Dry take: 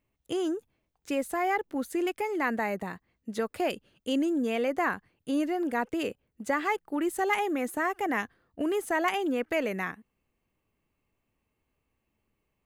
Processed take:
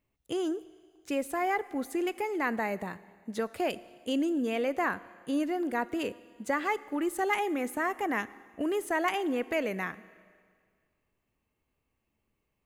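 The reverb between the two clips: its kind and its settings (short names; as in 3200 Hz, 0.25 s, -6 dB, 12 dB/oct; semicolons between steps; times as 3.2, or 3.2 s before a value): Schroeder reverb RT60 1.9 s, combs from 25 ms, DRR 17.5 dB; gain -1.5 dB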